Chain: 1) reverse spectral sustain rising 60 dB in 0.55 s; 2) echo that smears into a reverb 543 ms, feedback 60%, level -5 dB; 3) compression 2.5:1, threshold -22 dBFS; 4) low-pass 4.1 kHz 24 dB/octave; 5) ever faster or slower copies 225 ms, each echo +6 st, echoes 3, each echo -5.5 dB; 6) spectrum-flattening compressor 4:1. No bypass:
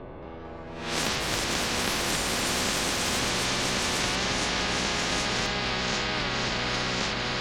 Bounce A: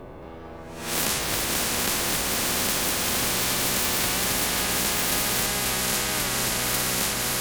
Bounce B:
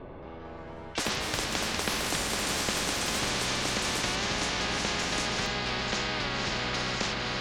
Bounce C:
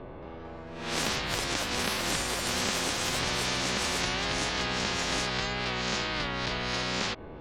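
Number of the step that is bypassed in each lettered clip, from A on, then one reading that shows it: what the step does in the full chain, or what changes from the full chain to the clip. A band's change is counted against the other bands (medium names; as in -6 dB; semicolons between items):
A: 4, 8 kHz band +7.0 dB; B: 1, crest factor change +2.5 dB; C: 2, momentary loudness spread change +2 LU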